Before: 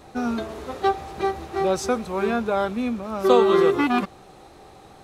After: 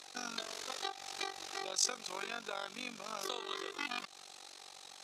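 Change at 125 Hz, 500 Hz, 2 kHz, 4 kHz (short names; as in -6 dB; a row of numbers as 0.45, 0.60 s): -29.0, -26.0, -11.5, -3.0 dB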